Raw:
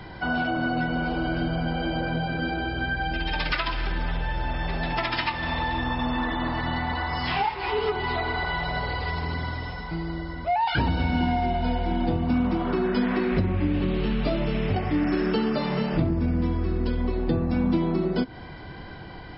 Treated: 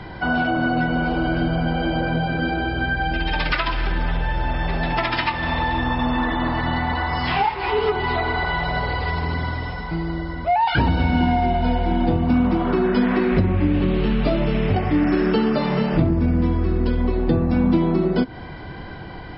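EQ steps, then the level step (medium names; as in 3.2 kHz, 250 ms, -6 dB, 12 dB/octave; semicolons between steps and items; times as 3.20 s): low-pass 3.7 kHz 6 dB/octave; +5.5 dB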